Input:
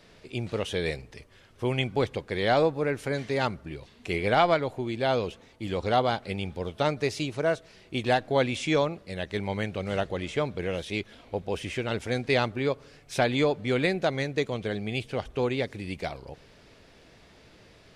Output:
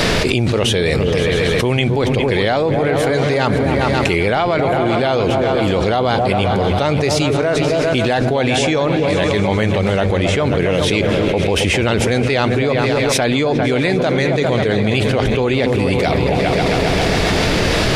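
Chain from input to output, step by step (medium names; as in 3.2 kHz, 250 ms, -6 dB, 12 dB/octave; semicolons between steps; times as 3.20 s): on a send: delay with an opening low-pass 134 ms, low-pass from 200 Hz, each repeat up 2 oct, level -6 dB; on the sum: level flattener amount 100%; trim +3 dB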